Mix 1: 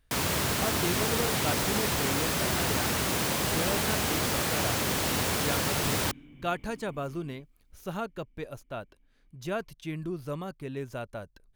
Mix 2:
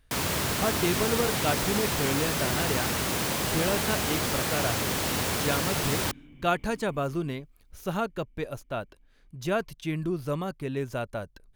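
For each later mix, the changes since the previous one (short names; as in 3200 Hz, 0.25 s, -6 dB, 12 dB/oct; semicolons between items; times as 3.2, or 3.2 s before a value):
speech +5.0 dB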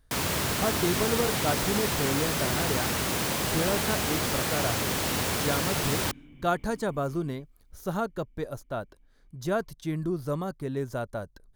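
speech: add bell 2600 Hz -12 dB 0.61 oct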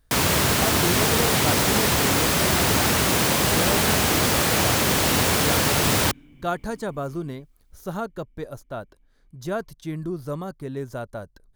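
first sound +8.0 dB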